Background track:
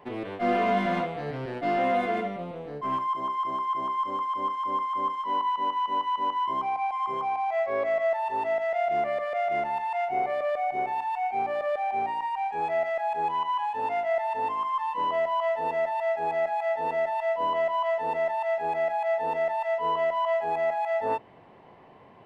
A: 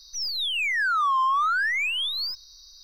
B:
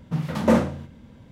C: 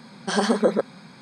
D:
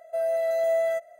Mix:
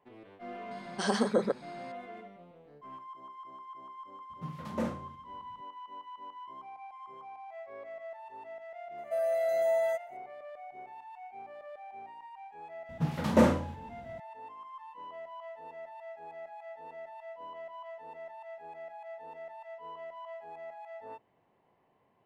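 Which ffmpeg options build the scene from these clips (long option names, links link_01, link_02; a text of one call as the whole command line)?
ffmpeg -i bed.wav -i cue0.wav -i cue1.wav -i cue2.wav -i cue3.wav -filter_complex "[2:a]asplit=2[link_01][link_02];[0:a]volume=-18.5dB[link_03];[link_02]asplit=2[link_04][link_05];[link_05]adelay=46,volume=-9dB[link_06];[link_04][link_06]amix=inputs=2:normalize=0[link_07];[3:a]atrim=end=1.21,asetpts=PTS-STARTPTS,volume=-7.5dB,afade=type=in:duration=0.004:curve=hsin,afade=type=out:start_time=1.206:duration=0.004:curve=hsin,adelay=710[link_08];[link_01]atrim=end=1.31,asetpts=PTS-STARTPTS,volume=-15.5dB,afade=type=in:duration=0.004:curve=hsin,afade=type=out:start_time=1.306:duration=0.004:curve=hsin,adelay=4300[link_09];[4:a]atrim=end=1.19,asetpts=PTS-STARTPTS,volume=-4dB,afade=type=in:duration=0.004:curve=hsin,afade=type=out:start_time=1.186:duration=0.004:curve=hsin,adelay=396018S[link_10];[link_07]atrim=end=1.31,asetpts=PTS-STARTPTS,volume=-4dB,afade=type=in:duration=0.004:curve=hsin,afade=type=out:start_time=1.306:duration=0.004:curve=hsin,adelay=12890[link_11];[link_03][link_08][link_09][link_10][link_11]amix=inputs=5:normalize=0" out.wav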